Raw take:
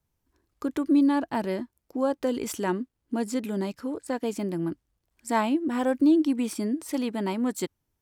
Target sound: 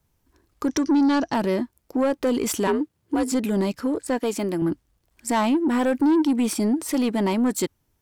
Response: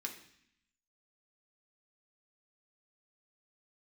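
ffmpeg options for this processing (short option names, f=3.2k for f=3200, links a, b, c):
-filter_complex "[0:a]asettb=1/sr,asplit=3[a][b][c];[a]atrim=end=4.194[d];[b]atrim=start=4.19:end=4.62,asetpts=PTS-STARTPTS,afade=t=in:d=0.004:c=qsin,afade=t=out:st=0.426:d=0.004:c=qsin,highpass=f=330:p=1[e];[c]atrim=start=4.616[f];[d][e]acrossfade=d=0.004:c1=hsin:c2=qsin[g];[g][f]acrossfade=d=0.004:c1=qsin:c2=hsin,asplit=2[h][i];[i]alimiter=limit=-22.5dB:level=0:latency=1:release=36,volume=-1.5dB[j];[h][j]amix=inputs=2:normalize=0,asettb=1/sr,asplit=3[k][l][m];[k]atrim=end=0.684[n];[l]atrim=start=0.68:end=1.34,asetpts=PTS-STARTPTS,afade=t=in:d=0.004:c=qsin,afade=t=out:st=0.656:d=0.004:c=qsin,lowpass=f=5.8k:t=q:w=15[o];[m]atrim=start=1.336[p];[n][o]acrossfade=d=0.004:c1=hsin:c2=qsin[q];[q][p]acrossfade=d=0.004:c1=qsin:c2=hsin,asettb=1/sr,asplit=3[r][s][t];[r]atrim=end=2.674[u];[s]atrim=start=2.67:end=3.32,asetpts=PTS-STARTPTS,afade=t=in:d=0.004:c=qsin,afade=t=out:st=0.646:d=0.004:c=qsin,afreqshift=50[v];[t]atrim=start=3.316[w];[u][v]acrossfade=d=0.004:c1=hsin:c2=qsin[x];[x][w]acrossfade=d=0.004:c1=qsin:c2=hsin,asoftclip=type=tanh:threshold=-18.5dB,volume=3.5dB"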